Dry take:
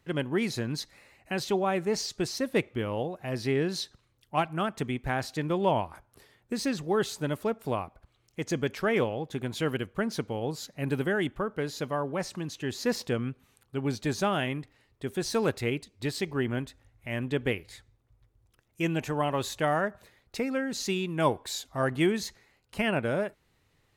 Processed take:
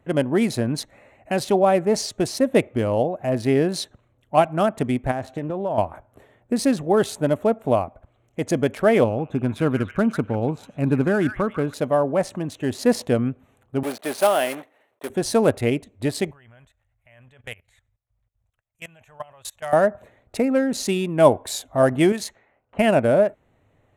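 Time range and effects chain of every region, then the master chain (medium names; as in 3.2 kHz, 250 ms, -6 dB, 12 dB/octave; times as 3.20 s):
5.11–5.78 s: low-pass 3.6 kHz 6 dB/octave + compression 12:1, threshold -31 dBFS + loudspeaker Doppler distortion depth 0.16 ms
9.04–11.74 s: treble shelf 4.1 kHz -11 dB + comb 0.8 ms, depth 43% + repeats whose band climbs or falls 146 ms, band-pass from 1.8 kHz, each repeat 0.7 oct, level -4.5 dB
13.83–15.10 s: block-companded coder 3-bit + high-pass 460 Hz + peaking EQ 7.1 kHz -9.5 dB 0.35 oct
16.31–19.73 s: amplifier tone stack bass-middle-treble 10-0-10 + level held to a coarse grid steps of 19 dB
22.12–22.79 s: level-controlled noise filter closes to 1.2 kHz, open at -31 dBFS + bass shelf 440 Hz -10 dB
whole clip: local Wiener filter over 9 samples; fifteen-band graphic EQ 100 Hz +5 dB, 250 Hz +6 dB, 630 Hz +11 dB, 10 kHz +12 dB; trim +4 dB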